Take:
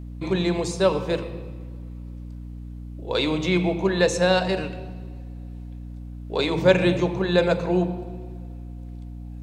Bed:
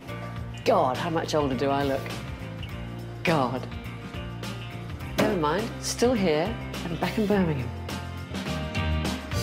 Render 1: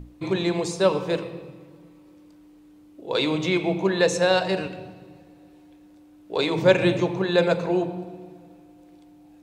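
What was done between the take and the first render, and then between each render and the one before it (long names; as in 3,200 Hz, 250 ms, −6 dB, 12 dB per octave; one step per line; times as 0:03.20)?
mains-hum notches 60/120/180/240 Hz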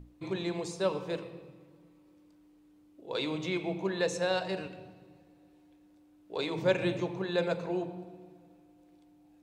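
level −10 dB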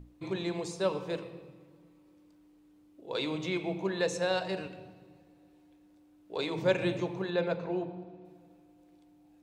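0:07.30–0:08.25: high-frequency loss of the air 140 metres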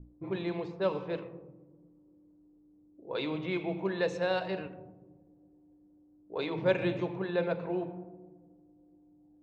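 low-pass that shuts in the quiet parts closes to 450 Hz, open at −26.5 dBFS
low-pass filter 3,400 Hz 12 dB per octave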